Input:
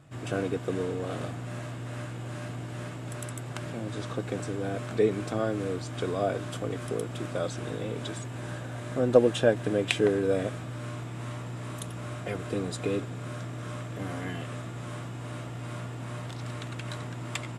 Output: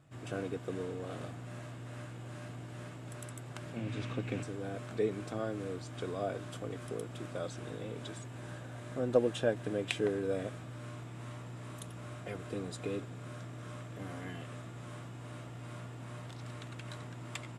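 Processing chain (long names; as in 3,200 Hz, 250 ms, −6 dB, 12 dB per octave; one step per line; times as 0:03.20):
0:03.76–0:04.43: graphic EQ with 15 bands 100 Hz +8 dB, 250 Hz +7 dB, 2,500 Hz +11 dB, 10,000 Hz −4 dB
level −8 dB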